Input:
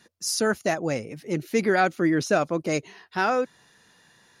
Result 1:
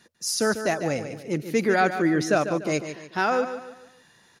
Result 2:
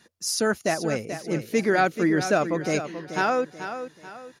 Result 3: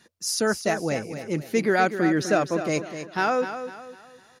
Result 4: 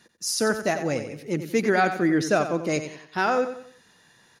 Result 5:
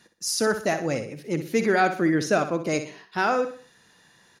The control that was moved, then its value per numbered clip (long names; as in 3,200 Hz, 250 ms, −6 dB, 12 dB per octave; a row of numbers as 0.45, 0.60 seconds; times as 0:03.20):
repeating echo, delay time: 146, 434, 251, 91, 62 milliseconds